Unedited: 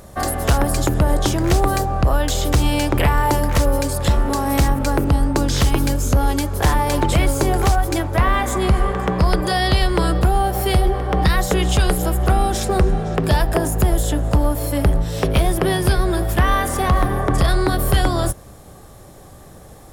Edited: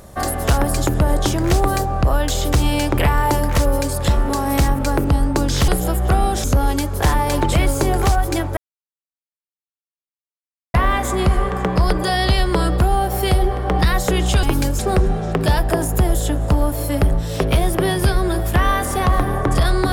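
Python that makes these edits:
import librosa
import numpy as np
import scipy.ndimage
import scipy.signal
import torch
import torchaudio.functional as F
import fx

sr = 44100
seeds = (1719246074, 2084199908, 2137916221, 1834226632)

y = fx.edit(x, sr, fx.swap(start_s=5.68, length_s=0.36, other_s=11.86, other_length_s=0.76),
    fx.insert_silence(at_s=8.17, length_s=2.17), tone=tone)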